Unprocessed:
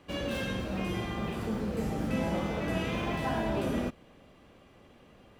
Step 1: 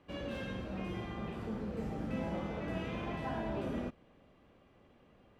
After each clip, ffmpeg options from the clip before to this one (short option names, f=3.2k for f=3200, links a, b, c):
-af "lowpass=f=2.7k:p=1,volume=-6.5dB"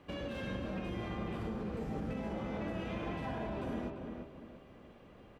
-filter_complex "[0:a]alimiter=level_in=13dB:limit=-24dB:level=0:latency=1:release=156,volume=-13dB,asplit=2[a][b];[b]adelay=343,lowpass=f=2.2k:p=1,volume=-5dB,asplit=2[c][d];[d]adelay=343,lowpass=f=2.2k:p=1,volume=0.37,asplit=2[e][f];[f]adelay=343,lowpass=f=2.2k:p=1,volume=0.37,asplit=2[g][h];[h]adelay=343,lowpass=f=2.2k:p=1,volume=0.37,asplit=2[i][j];[j]adelay=343,lowpass=f=2.2k:p=1,volume=0.37[k];[a][c][e][g][i][k]amix=inputs=6:normalize=0,volume=5.5dB"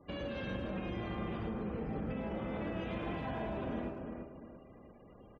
-filter_complex "[0:a]afftfilt=real='re*gte(hypot(re,im),0.00141)':imag='im*gte(hypot(re,im),0.00141)':win_size=1024:overlap=0.75,asplit=2[a][b];[b]adelay=110,highpass=300,lowpass=3.4k,asoftclip=type=hard:threshold=-38dB,volume=-10dB[c];[a][c]amix=inputs=2:normalize=0"